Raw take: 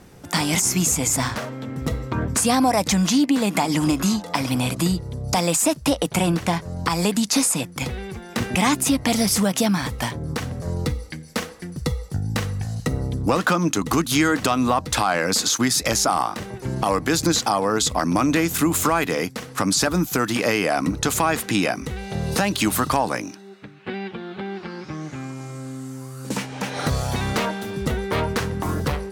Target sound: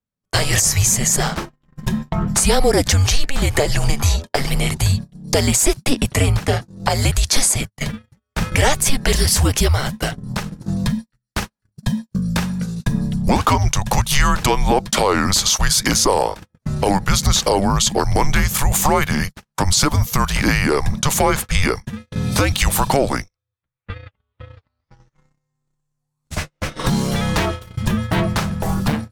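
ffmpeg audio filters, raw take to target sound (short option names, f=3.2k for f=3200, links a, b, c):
-af "afreqshift=-280,agate=range=-46dB:threshold=-27dB:ratio=16:detection=peak,volume=4.5dB"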